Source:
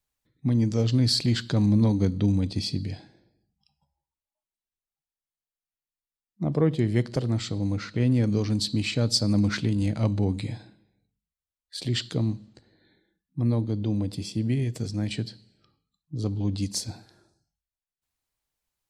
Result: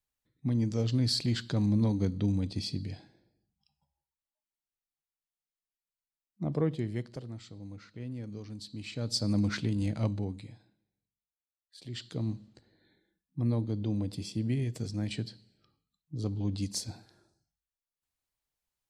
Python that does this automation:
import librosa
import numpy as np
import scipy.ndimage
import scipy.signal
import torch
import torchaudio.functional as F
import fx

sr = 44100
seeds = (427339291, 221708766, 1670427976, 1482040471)

y = fx.gain(x, sr, db=fx.line((6.59, -6.0), (7.39, -17.5), (8.68, -17.5), (9.27, -5.5), (10.05, -5.5), (10.55, -17.0), (11.77, -17.0), (12.35, -5.0)))